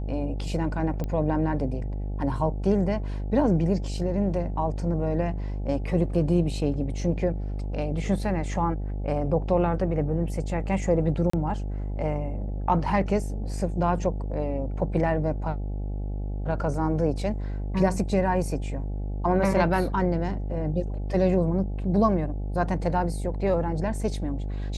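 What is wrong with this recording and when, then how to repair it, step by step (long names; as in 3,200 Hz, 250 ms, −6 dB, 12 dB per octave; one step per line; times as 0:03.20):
mains buzz 50 Hz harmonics 17 −30 dBFS
0:01.04: click −19 dBFS
0:11.30–0:11.33: drop-out 34 ms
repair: click removal
hum removal 50 Hz, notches 17
repair the gap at 0:11.30, 34 ms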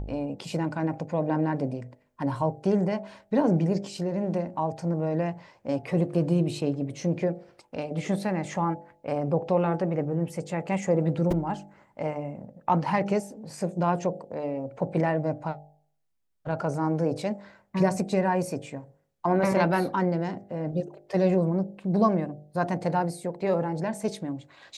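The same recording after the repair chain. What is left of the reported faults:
none of them is left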